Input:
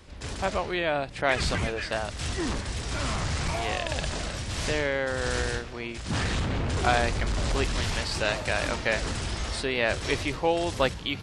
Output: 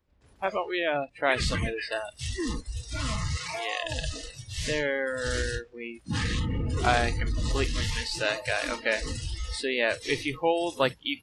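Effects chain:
noise reduction from a noise print of the clip's start 23 dB
0:03.37–0:03.83: meter weighting curve A
one half of a high-frequency compander decoder only

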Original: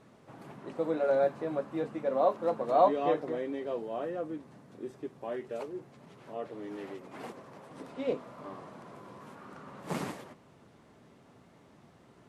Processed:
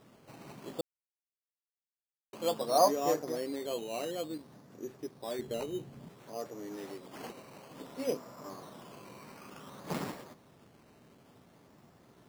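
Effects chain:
sample-and-hold swept by an LFO 10×, swing 60% 0.57 Hz
0:00.81–0:02.33: silence
0:05.39–0:06.09: low-shelf EQ 270 Hz +12 dB
level −1.5 dB

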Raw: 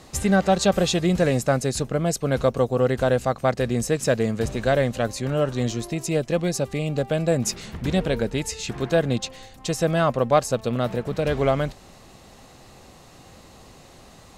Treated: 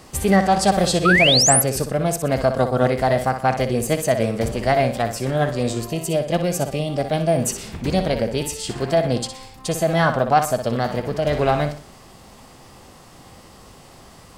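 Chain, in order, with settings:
flutter between parallel walls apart 10.5 metres, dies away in 0.4 s
formants moved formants +3 semitones
sound drawn into the spectrogram rise, 0:01.05–0:01.62, 1,200–12,000 Hz −18 dBFS
level +2 dB

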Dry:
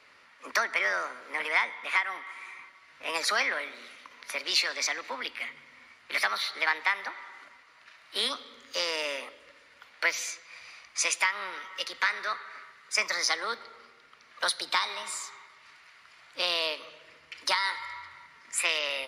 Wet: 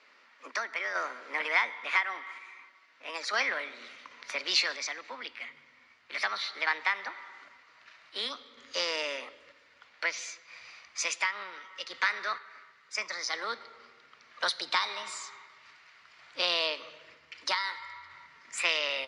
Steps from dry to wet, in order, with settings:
low-pass filter 7,100 Hz 24 dB per octave
sample-and-hold tremolo 2.1 Hz
high-pass filter 200 Hz 24 dB per octave, from 0:03.49 58 Hz

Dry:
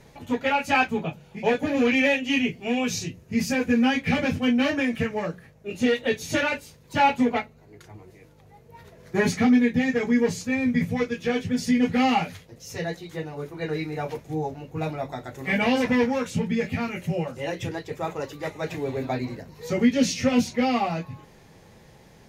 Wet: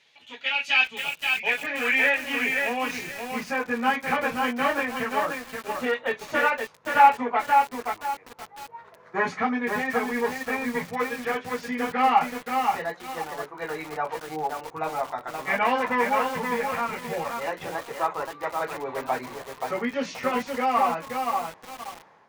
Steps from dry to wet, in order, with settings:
automatic gain control gain up to 6 dB
band-pass filter sweep 3,100 Hz → 1,100 Hz, 0:01.15–0:02.40
feedback echo at a low word length 526 ms, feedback 35%, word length 7 bits, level −3.5 dB
level +4 dB

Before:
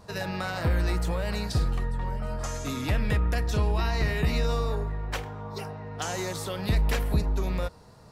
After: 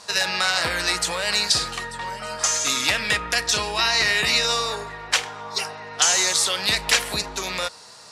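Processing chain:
meter weighting curve ITU-R 468
level +8 dB

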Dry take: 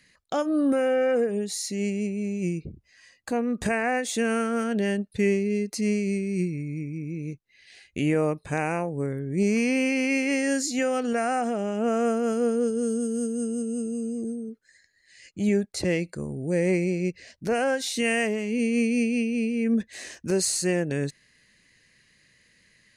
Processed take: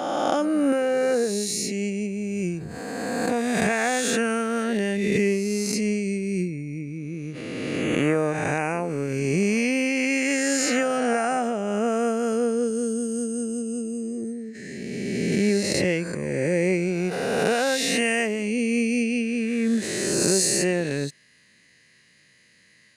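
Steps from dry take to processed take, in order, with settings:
peak hold with a rise ahead of every peak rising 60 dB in 1.72 s
high-pass filter 110 Hz
background raised ahead of every attack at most 22 dB per second

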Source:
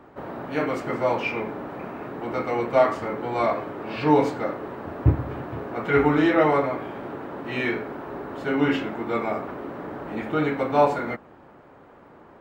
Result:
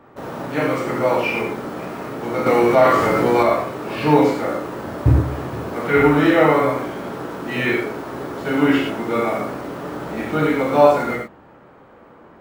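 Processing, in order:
in parallel at −11 dB: bit reduction 6 bits
on the sum: reverb whose tail is shaped and stops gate 130 ms flat, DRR −1 dB
0:02.46–0:03.43: envelope flattener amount 50%

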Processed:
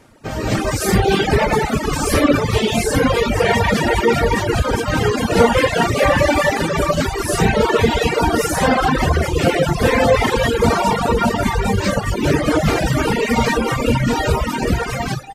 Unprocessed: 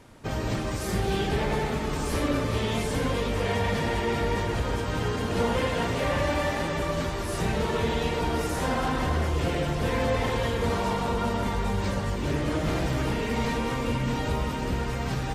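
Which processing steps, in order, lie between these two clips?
automatic gain control gain up to 12.5 dB
reverb reduction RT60 1.7 s
on a send: single-tap delay 239 ms −20 dB
on the sum: reverb reduction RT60 0.65 s
low-shelf EQ 140 Hz −5 dB
gain on a spectral selection 0:02.60–0:02.81, 780–2,200 Hz −7 dB
parametric band 3,500 Hz −3 dB 0.58 octaves
notch filter 1,000 Hz, Q 13
level +4.5 dB

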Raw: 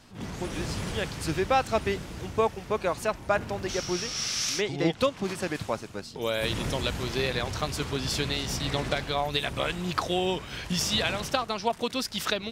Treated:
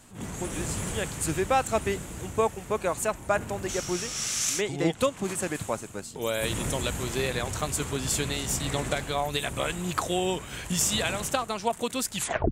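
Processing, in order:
turntable brake at the end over 0.37 s
high shelf with overshoot 6,200 Hz +6.5 dB, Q 3

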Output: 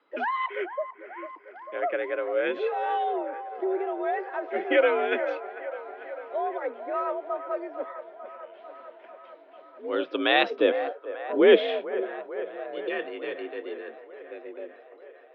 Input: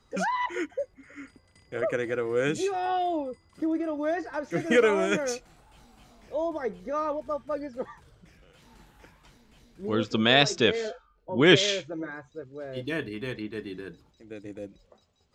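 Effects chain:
0:10.50–0:12.56: tilt shelving filter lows +6.5 dB, about 680 Hz
delay with a band-pass on its return 446 ms, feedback 73%, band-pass 840 Hz, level −11 dB
single-sideband voice off tune +59 Hz 240–3,300 Hz

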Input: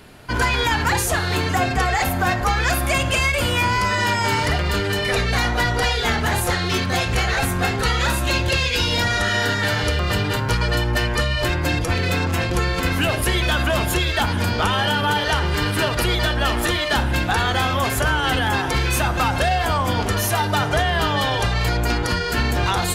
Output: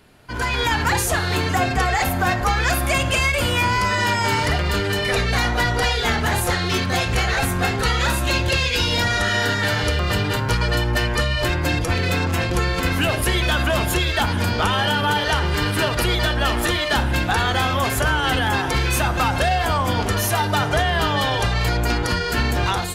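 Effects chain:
automatic gain control gain up to 9.5 dB
level −8 dB

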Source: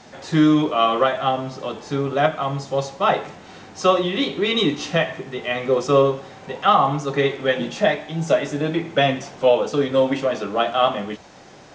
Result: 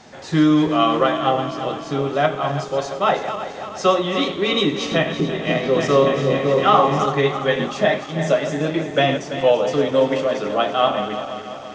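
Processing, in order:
feedback delay that plays each chunk backwards 168 ms, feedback 73%, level −9.5 dB
0:04.64–0:07.06: echo whose low-pass opens from repeat to repeat 277 ms, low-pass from 200 Hz, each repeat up 2 octaves, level 0 dB

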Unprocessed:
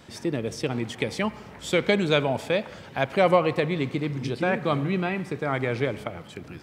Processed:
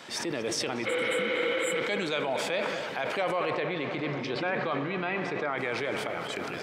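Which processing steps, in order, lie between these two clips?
downward compressor, threshold −27 dBFS, peak gain reduction 13 dB
0:00.89–0:01.75: healed spectral selection 270–7,100 Hz after
0:03.50–0:05.58: high-frequency loss of the air 140 metres
feedback echo with a low-pass in the loop 235 ms, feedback 78%, low-pass 3,200 Hz, level −13 dB
brickwall limiter −24 dBFS, peak gain reduction 9.5 dB
meter weighting curve A
level that may fall only so fast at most 24 dB per second
level +6.5 dB

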